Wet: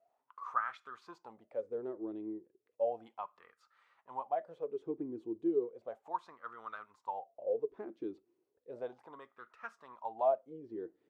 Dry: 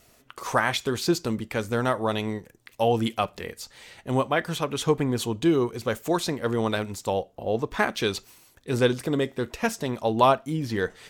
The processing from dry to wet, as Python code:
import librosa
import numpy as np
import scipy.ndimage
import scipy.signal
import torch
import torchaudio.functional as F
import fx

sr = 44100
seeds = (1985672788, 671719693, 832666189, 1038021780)

y = fx.wah_lfo(x, sr, hz=0.34, low_hz=320.0, high_hz=1300.0, q=10.0)
y = F.gain(torch.from_numpy(y), -3.0).numpy()